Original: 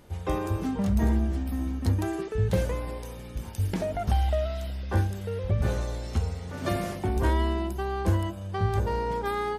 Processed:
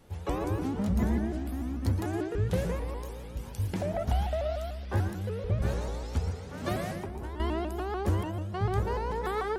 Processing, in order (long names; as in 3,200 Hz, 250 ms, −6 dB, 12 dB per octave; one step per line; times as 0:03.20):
0:06.97–0:07.40: downward compressor 12 to 1, threshold −32 dBFS, peak gain reduction 13.5 dB
on a send at −7 dB: convolution reverb RT60 0.40 s, pre-delay 107 ms
on the sum: pitch modulation by a square or saw wave saw up 6.8 Hz, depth 160 cents
level −3.5 dB